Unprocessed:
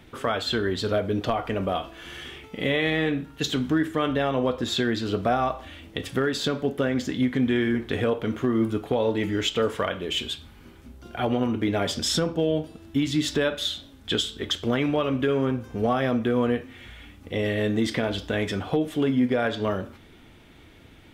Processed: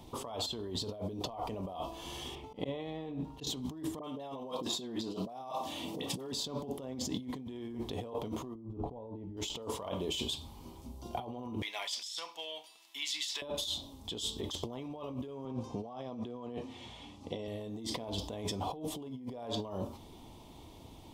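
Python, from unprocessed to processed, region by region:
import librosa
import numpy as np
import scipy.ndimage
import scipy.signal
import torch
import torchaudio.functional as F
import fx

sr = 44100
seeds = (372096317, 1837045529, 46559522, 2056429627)

y = fx.chain(x, sr, fx.lowpass(hz=2400.0, slope=6),
    fx.auto_swell(attack_ms=141.0), at=(2.35, 3.47))
y = fx.chain(y, sr, fx.highpass(hz=140.0, slope=24),
    fx.dispersion(late='highs', ms=48.0, hz=1100.0),
    fx.band_squash(depth_pct=70), at=(3.99, 6.32))
y = fx.chain(y, sr, fx.lowpass(hz=1000.0, slope=6),
    fx.tilt_eq(slope=-2.5), at=(8.55, 9.37))
y = fx.chain(y, sr, fx.highpass_res(hz=2000.0, q=2.4),
    fx.high_shelf(hz=6300.0, db=-3.5), at=(11.62, 13.42))
y = fx.chain(y, sr, fx.bandpass_edges(low_hz=110.0, high_hz=5400.0),
    fx.high_shelf(hz=4100.0, db=5.5), at=(15.45, 17.48))
y = fx.curve_eq(y, sr, hz=(500.0, 1000.0, 1500.0, 3000.0, 4900.0), db=(0, 8, -19, -3, 4))
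y = fx.over_compress(y, sr, threshold_db=-32.0, ratio=-1.0)
y = y * 10.0 ** (-8.0 / 20.0)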